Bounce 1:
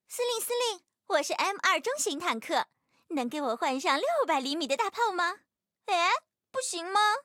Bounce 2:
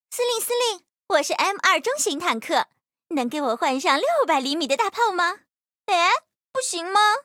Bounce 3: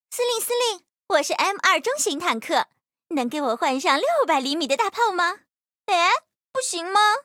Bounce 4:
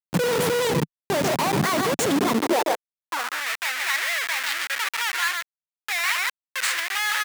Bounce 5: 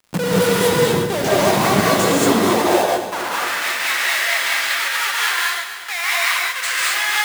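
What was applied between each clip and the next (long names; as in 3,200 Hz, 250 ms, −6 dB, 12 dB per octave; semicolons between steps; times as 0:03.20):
noise gate −49 dBFS, range −34 dB; level +7 dB
no processing that can be heard
single-tap delay 141 ms −8.5 dB; comparator with hysteresis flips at −24 dBFS; high-pass filter sweep 160 Hz → 1,800 Hz, 0:02.09–0:03.46
feedback delay that plays each chunk backwards 120 ms, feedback 76%, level −12 dB; surface crackle 180 per second −40 dBFS; reverb whose tail is shaped and stops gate 250 ms rising, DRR −5 dB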